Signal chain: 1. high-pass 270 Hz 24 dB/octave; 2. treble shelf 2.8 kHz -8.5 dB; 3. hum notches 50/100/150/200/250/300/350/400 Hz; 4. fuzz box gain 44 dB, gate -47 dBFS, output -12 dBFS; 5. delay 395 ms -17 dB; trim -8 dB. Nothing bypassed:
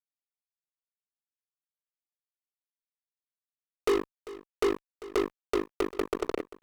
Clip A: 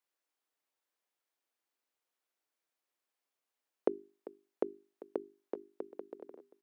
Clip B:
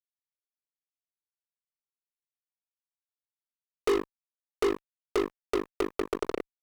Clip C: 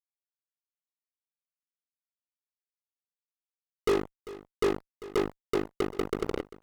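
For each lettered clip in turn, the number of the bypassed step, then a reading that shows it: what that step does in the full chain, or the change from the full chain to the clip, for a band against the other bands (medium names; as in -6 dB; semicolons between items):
4, crest factor change +16.0 dB; 5, momentary loudness spread change -5 LU; 1, 125 Hz band +9.0 dB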